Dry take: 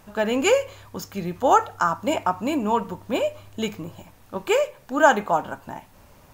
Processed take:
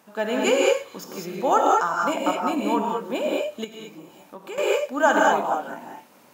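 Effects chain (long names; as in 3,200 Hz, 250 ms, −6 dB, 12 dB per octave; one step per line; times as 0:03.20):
high-pass filter 190 Hz 24 dB per octave
reverb whose tail is shaped and stops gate 230 ms rising, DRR −2 dB
0:03.64–0:04.58: downward compressor 2.5 to 1, threshold −36 dBFS, peak gain reduction 13.5 dB
level −3.5 dB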